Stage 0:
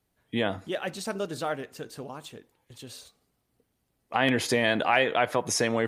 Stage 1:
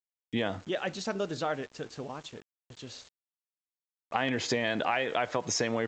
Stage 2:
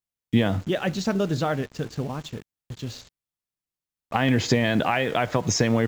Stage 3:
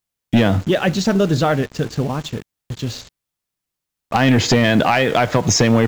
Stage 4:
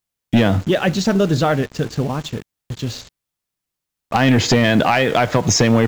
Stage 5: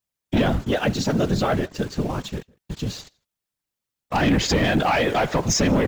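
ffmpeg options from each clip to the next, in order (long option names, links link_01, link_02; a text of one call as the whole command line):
ffmpeg -i in.wav -af "acompressor=threshold=-25dB:ratio=5,aresample=16000,aeval=exprs='val(0)*gte(abs(val(0)),0.00335)':channel_layout=same,aresample=44100" out.wav
ffmpeg -i in.wav -filter_complex "[0:a]bass=frequency=250:gain=12,treble=frequency=4000:gain=0,asplit=2[link_01][link_02];[link_02]acrusher=bits=6:mix=0:aa=0.000001,volume=-10dB[link_03];[link_01][link_03]amix=inputs=2:normalize=0,volume=2.5dB" out.wav
ffmpeg -i in.wav -af "aeval=exprs='0.447*sin(PI/2*1.78*val(0)/0.447)':channel_layout=same" out.wav
ffmpeg -i in.wav -af anull out.wav
ffmpeg -i in.wav -filter_complex "[0:a]asplit=2[link_01][link_02];[link_02]adelay=157.4,volume=-28dB,highshelf=frequency=4000:gain=-3.54[link_03];[link_01][link_03]amix=inputs=2:normalize=0,afftfilt=real='hypot(re,im)*cos(2*PI*random(0))':imag='hypot(re,im)*sin(2*PI*random(1))':win_size=512:overlap=0.75,asoftclip=type=tanh:threshold=-14dB,volume=2.5dB" out.wav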